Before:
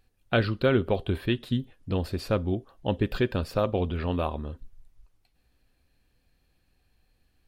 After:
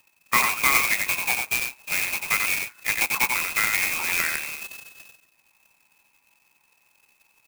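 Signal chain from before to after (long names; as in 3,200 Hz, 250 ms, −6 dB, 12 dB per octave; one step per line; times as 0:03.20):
voice inversion scrambler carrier 2,600 Hz
high-pass filter 180 Hz
parametric band 980 Hz +9.5 dB 0.88 octaves
single-tap delay 92 ms −4.5 dB
converter with an unsteady clock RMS 0.049 ms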